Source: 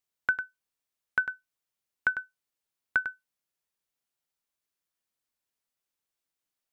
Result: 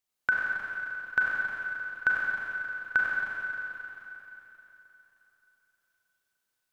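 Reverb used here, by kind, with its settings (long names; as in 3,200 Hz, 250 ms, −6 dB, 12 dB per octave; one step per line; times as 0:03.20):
four-comb reverb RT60 3.5 s, combs from 30 ms, DRR −4 dB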